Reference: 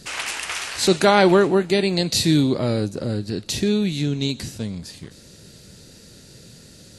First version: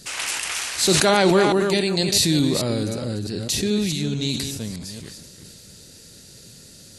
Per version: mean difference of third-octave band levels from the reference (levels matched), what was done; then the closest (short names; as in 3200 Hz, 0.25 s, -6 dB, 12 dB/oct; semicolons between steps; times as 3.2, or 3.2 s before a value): 4.0 dB: reverse delay 0.218 s, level -8 dB; high shelf 4500 Hz +9 dB; sustainer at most 30 dB/s; gain -3.5 dB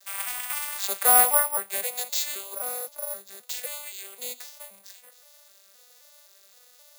13.5 dB: arpeggiated vocoder major triad, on G3, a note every 0.261 s; inverse Chebyshev high-pass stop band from 330 Hz, stop band 40 dB; careless resampling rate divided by 4×, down none, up zero stuff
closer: first